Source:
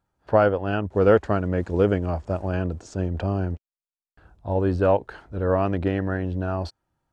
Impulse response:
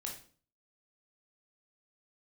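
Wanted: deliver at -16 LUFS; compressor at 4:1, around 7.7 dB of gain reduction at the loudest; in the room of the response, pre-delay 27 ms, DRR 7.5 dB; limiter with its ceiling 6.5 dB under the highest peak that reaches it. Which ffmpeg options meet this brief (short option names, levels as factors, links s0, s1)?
-filter_complex "[0:a]acompressor=threshold=0.0891:ratio=4,alimiter=limit=0.141:level=0:latency=1,asplit=2[s0][s1];[1:a]atrim=start_sample=2205,adelay=27[s2];[s1][s2]afir=irnorm=-1:irlink=0,volume=0.501[s3];[s0][s3]amix=inputs=2:normalize=0,volume=4.73"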